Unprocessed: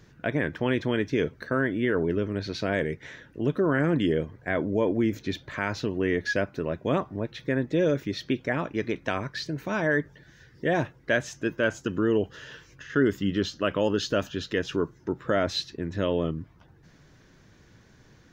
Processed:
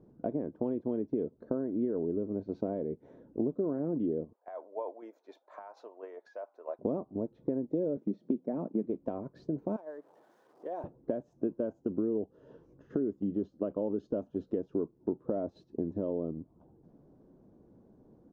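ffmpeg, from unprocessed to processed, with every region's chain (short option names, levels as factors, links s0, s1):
-filter_complex "[0:a]asettb=1/sr,asplit=3[s0][s1][s2];[s0]atrim=end=4.334[s3];[s1]atrim=start=4.33:end=6.79,asetpts=PTS-STARTPTS,afade=t=in:d=0.004:c=qsin,afade=t=out:st=2.456:d=0.004:c=qsin,highpass=f=760:w=0.5412,highpass=f=760:w=1.3066,equalizer=f=3000:w=4.6:g=-4,acompressor=threshold=0.0251:ratio=6:attack=3.2:release=140:knee=1:detection=peak[s4];[s2]atrim=start=6.786[s5];[s3][s4]acrossfade=d=0.004:c1=hsin:c2=qsin[s6];[s6][s5]acrossfade=d=0.004:c1=qsin:c2=hsin,asettb=1/sr,asplit=3[s7][s8][s9];[s7]atrim=end=7.974[s10];[s8]atrim=start=7.97:end=8.86,asetpts=PTS-STARTPTS,afade=t=in:d=0.004:c=qsin,afade=t=out:st=0.886:d=0.004:c=qsin,highpass=f=150:w=0.5412,highpass=f=150:w=1.3066,equalizer=f=200:t=o:w=0.55:g=7.5[s11];[s9]atrim=start=8.856[s12];[s10][s11]acrossfade=d=0.004:c1=hsin:c2=qsin[s13];[s13][s12]acrossfade=d=0.004:c1=qsin:c2=hsin,asettb=1/sr,asplit=3[s14][s15][s16];[s14]atrim=end=9.764[s17];[s15]atrim=start=9.76:end=10.84,asetpts=PTS-STARTPTS,afade=t=in:d=0.004:c=qsin,afade=t=out:st=1.076:d=0.004:c=qsin,aeval=exprs='val(0)+0.5*0.0133*sgn(val(0))':c=same,highpass=920,acompressor=threshold=0.00794:ratio=1.5:attack=3.2:release=140:knee=1:detection=peak[s18];[s16]atrim=start=10.836[s19];[s17][s18]acrossfade=d=0.004:c1=hsin:c2=qsin[s20];[s20][s19]acrossfade=d=0.004:c1=qsin:c2=hsin,acompressor=threshold=0.0158:ratio=12,agate=range=0.398:threshold=0.00794:ratio=16:detection=peak,firequalizer=gain_entry='entry(120,0);entry(220,12);entry(700,8);entry(1800,-23)':delay=0.05:min_phase=1,volume=0.794"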